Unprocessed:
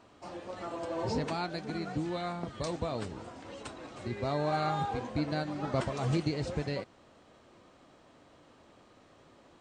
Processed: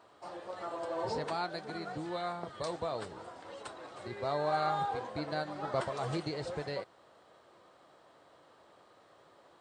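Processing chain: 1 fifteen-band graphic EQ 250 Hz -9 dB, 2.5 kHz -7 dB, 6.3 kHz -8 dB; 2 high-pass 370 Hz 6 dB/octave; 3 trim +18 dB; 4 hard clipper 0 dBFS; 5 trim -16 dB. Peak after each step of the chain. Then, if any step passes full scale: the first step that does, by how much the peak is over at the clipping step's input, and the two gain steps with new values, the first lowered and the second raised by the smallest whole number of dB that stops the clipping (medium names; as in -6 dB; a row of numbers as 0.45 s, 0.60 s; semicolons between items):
-19.0 dBFS, -21.5 dBFS, -3.5 dBFS, -3.5 dBFS, -19.5 dBFS; nothing clips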